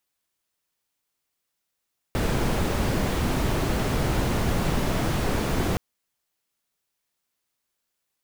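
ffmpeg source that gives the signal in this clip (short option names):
-f lavfi -i "anoisesrc=c=brown:a=0.313:d=3.62:r=44100:seed=1"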